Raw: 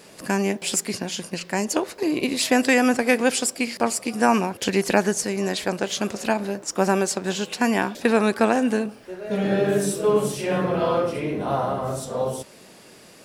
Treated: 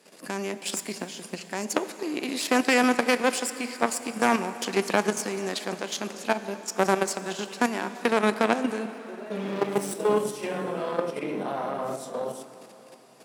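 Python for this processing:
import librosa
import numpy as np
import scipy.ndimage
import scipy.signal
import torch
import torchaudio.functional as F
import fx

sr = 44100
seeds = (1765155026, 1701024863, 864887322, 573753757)

y = fx.lower_of_two(x, sr, delay_ms=0.36, at=(9.38, 9.93))
y = fx.cheby_harmonics(y, sr, harmonics=(2, 5, 7), levels_db=(-6, -26, -23), full_scale_db=-4.5)
y = fx.level_steps(y, sr, step_db=10)
y = scipy.signal.sosfilt(scipy.signal.butter(4, 180.0, 'highpass', fs=sr, output='sos'), y)
y = fx.rev_plate(y, sr, seeds[0], rt60_s=4.2, hf_ratio=0.85, predelay_ms=0, drr_db=11.5)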